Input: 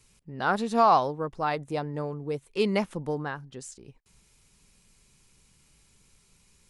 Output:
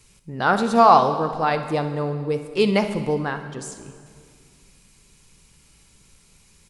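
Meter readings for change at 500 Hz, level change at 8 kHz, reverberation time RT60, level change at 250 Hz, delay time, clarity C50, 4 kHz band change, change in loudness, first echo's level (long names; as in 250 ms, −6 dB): +7.0 dB, +7.0 dB, 2.2 s, +7.5 dB, 62 ms, 9.0 dB, +7.5 dB, +7.0 dB, −15.0 dB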